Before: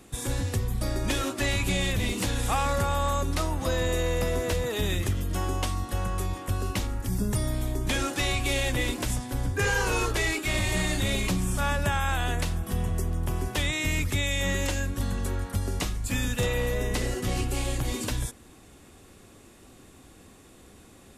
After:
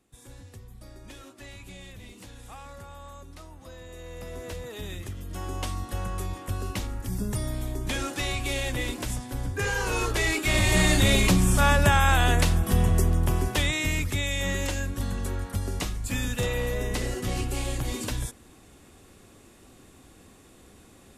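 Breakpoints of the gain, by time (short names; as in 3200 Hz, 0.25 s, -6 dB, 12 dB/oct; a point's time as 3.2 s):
3.87 s -18 dB
4.46 s -9.5 dB
5.16 s -9.5 dB
5.68 s -2.5 dB
9.77 s -2.5 dB
10.87 s +6.5 dB
13.04 s +6.5 dB
14.09 s -1 dB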